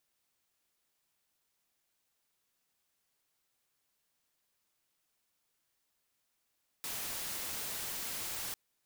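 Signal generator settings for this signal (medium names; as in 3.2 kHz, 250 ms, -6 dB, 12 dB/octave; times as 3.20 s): noise white, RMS -39.5 dBFS 1.70 s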